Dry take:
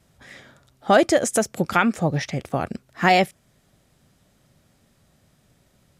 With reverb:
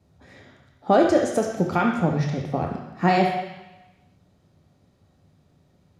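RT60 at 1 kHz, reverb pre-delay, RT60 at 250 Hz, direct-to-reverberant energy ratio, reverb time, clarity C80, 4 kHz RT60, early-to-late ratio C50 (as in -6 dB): 1.1 s, 3 ms, 1.0 s, 1.5 dB, 1.0 s, 7.0 dB, 1.1 s, 4.5 dB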